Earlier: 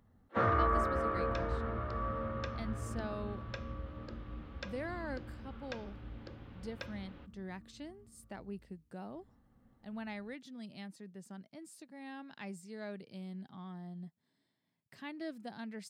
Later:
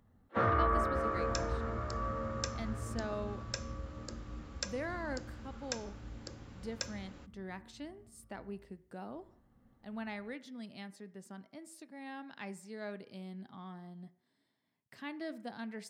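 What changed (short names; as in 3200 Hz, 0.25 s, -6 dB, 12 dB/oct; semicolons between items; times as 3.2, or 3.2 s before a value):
speech: send on; second sound: remove Chebyshev low-pass 3400 Hz, order 3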